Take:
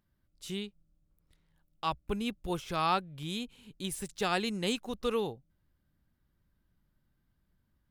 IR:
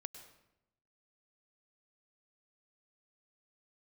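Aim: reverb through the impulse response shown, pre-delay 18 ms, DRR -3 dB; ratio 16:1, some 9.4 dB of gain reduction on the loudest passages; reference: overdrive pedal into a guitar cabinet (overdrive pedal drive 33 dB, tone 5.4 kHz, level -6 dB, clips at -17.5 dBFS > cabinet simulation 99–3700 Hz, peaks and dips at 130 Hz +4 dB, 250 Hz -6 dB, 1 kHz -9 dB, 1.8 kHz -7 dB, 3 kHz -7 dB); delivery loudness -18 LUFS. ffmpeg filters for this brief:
-filter_complex "[0:a]acompressor=threshold=0.02:ratio=16,asplit=2[s0][s1];[1:a]atrim=start_sample=2205,adelay=18[s2];[s1][s2]afir=irnorm=-1:irlink=0,volume=2.24[s3];[s0][s3]amix=inputs=2:normalize=0,asplit=2[s4][s5];[s5]highpass=f=720:p=1,volume=44.7,asoftclip=type=tanh:threshold=0.133[s6];[s4][s6]amix=inputs=2:normalize=0,lowpass=f=5400:p=1,volume=0.501,highpass=99,equalizer=f=130:t=q:w=4:g=4,equalizer=f=250:t=q:w=4:g=-6,equalizer=f=1000:t=q:w=4:g=-9,equalizer=f=1800:t=q:w=4:g=-7,equalizer=f=3000:t=q:w=4:g=-7,lowpass=f=3700:w=0.5412,lowpass=f=3700:w=1.3066,volume=3.55"

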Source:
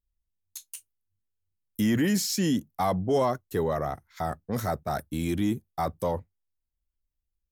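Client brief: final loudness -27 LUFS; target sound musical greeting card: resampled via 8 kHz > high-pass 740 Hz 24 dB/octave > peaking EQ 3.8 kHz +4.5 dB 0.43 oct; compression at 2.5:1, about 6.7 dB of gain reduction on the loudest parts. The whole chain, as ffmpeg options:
-af "acompressor=threshold=0.0282:ratio=2.5,aresample=8000,aresample=44100,highpass=f=740:w=0.5412,highpass=f=740:w=1.3066,equalizer=f=3800:t=o:w=0.43:g=4.5,volume=5.31"

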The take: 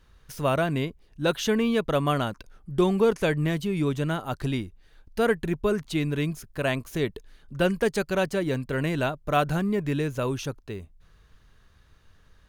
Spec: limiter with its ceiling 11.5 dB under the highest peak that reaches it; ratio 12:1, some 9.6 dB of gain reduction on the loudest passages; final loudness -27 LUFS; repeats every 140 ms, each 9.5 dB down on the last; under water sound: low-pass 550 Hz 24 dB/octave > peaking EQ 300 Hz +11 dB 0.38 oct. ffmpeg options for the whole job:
-af "acompressor=threshold=0.0501:ratio=12,alimiter=level_in=1.58:limit=0.0631:level=0:latency=1,volume=0.631,lowpass=f=550:w=0.5412,lowpass=f=550:w=1.3066,equalizer=f=300:t=o:w=0.38:g=11,aecho=1:1:140|280|420|560:0.335|0.111|0.0365|0.012,volume=2.51"

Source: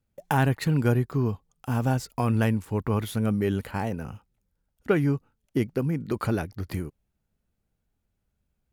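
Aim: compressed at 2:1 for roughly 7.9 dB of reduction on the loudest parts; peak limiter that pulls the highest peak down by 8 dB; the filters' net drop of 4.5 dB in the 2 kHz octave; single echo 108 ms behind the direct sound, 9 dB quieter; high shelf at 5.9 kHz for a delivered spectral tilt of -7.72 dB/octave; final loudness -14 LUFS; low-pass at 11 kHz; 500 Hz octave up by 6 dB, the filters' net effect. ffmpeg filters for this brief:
-af "lowpass=11000,equalizer=f=500:t=o:g=8,equalizer=f=2000:t=o:g=-6.5,highshelf=f=5900:g=-7.5,acompressor=threshold=0.0447:ratio=2,alimiter=limit=0.0891:level=0:latency=1,aecho=1:1:108:0.355,volume=7.5"

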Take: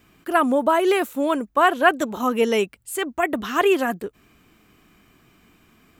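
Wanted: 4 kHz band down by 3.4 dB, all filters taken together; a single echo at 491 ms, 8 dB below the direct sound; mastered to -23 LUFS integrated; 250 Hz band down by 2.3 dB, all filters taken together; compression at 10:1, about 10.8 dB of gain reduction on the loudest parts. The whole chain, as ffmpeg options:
-af "equalizer=f=250:t=o:g=-3,equalizer=f=4000:t=o:g=-5.5,acompressor=threshold=0.0794:ratio=10,aecho=1:1:491:0.398,volume=1.68"

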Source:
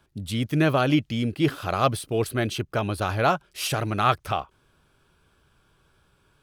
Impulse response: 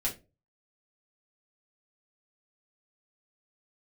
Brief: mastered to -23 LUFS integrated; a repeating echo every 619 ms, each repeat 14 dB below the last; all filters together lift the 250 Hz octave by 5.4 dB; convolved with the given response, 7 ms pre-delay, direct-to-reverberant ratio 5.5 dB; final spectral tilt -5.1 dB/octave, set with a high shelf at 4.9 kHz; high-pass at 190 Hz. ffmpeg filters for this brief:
-filter_complex "[0:a]highpass=190,equalizer=f=250:t=o:g=8.5,highshelf=f=4900:g=-4,aecho=1:1:619|1238:0.2|0.0399,asplit=2[s0][s1];[1:a]atrim=start_sample=2205,adelay=7[s2];[s1][s2]afir=irnorm=-1:irlink=0,volume=0.316[s3];[s0][s3]amix=inputs=2:normalize=0,volume=0.841"

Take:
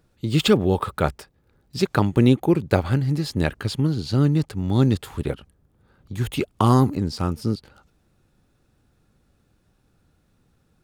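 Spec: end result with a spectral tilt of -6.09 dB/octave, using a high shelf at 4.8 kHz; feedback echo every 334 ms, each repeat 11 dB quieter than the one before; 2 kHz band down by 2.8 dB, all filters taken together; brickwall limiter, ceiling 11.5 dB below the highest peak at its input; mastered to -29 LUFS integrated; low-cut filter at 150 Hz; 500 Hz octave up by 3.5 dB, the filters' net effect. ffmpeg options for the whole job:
-af "highpass=150,equalizer=f=500:t=o:g=5,equalizer=f=2000:t=o:g=-5,highshelf=f=4800:g=3,alimiter=limit=0.211:level=0:latency=1,aecho=1:1:334|668|1002:0.282|0.0789|0.0221,volume=0.708"

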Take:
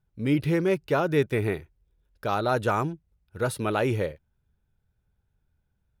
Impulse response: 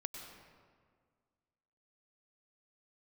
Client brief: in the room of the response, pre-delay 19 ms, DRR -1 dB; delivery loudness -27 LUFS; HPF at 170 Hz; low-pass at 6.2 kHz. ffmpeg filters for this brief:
-filter_complex "[0:a]highpass=170,lowpass=6200,asplit=2[s0][s1];[1:a]atrim=start_sample=2205,adelay=19[s2];[s1][s2]afir=irnorm=-1:irlink=0,volume=1.33[s3];[s0][s3]amix=inputs=2:normalize=0,volume=0.75"

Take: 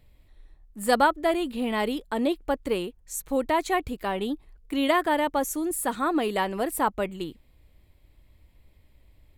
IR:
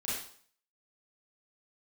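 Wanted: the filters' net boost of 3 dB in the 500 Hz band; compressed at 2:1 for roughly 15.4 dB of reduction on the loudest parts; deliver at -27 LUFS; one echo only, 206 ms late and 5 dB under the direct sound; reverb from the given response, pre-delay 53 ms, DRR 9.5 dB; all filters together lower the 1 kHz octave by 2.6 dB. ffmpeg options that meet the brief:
-filter_complex "[0:a]equalizer=f=500:t=o:g=5.5,equalizer=f=1000:t=o:g=-5.5,acompressor=threshold=0.00631:ratio=2,aecho=1:1:206:0.562,asplit=2[s0][s1];[1:a]atrim=start_sample=2205,adelay=53[s2];[s1][s2]afir=irnorm=-1:irlink=0,volume=0.211[s3];[s0][s3]amix=inputs=2:normalize=0,volume=2.99"

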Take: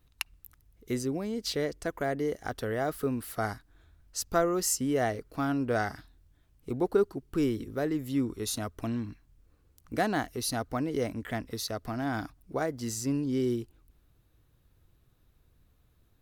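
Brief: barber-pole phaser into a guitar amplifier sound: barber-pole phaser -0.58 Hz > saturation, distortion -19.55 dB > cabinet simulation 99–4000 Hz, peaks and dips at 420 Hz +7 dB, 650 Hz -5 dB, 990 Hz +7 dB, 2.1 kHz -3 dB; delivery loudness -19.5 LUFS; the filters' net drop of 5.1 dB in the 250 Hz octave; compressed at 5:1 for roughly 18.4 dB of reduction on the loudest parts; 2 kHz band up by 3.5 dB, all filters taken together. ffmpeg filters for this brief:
-filter_complex "[0:a]equalizer=f=250:t=o:g=-8,equalizer=f=2000:t=o:g=5.5,acompressor=threshold=0.00708:ratio=5,asplit=2[s0][s1];[s1]afreqshift=-0.58[s2];[s0][s2]amix=inputs=2:normalize=1,asoftclip=threshold=0.0158,highpass=99,equalizer=f=420:t=q:w=4:g=7,equalizer=f=650:t=q:w=4:g=-5,equalizer=f=990:t=q:w=4:g=7,equalizer=f=2100:t=q:w=4:g=-3,lowpass=f=4000:w=0.5412,lowpass=f=4000:w=1.3066,volume=29.9"

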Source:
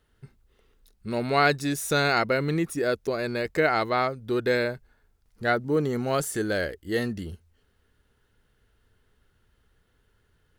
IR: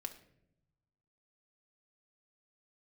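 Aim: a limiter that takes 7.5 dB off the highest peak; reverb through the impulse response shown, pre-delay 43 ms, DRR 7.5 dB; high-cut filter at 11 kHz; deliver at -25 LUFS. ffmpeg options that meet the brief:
-filter_complex "[0:a]lowpass=11000,alimiter=limit=0.168:level=0:latency=1,asplit=2[s0][s1];[1:a]atrim=start_sample=2205,adelay=43[s2];[s1][s2]afir=irnorm=-1:irlink=0,volume=0.562[s3];[s0][s3]amix=inputs=2:normalize=0,volume=1.26"

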